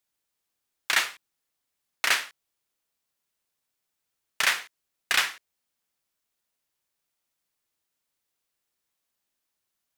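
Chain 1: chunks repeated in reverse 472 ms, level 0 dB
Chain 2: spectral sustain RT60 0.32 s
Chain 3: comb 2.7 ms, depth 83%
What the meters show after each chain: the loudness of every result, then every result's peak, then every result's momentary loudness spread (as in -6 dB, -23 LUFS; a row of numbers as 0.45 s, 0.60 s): -25.0 LUFS, -24.0 LUFS, -23.5 LUFS; -6.5 dBFS, -6.5 dBFS, -5.5 dBFS; 11 LU, 7 LU, 7 LU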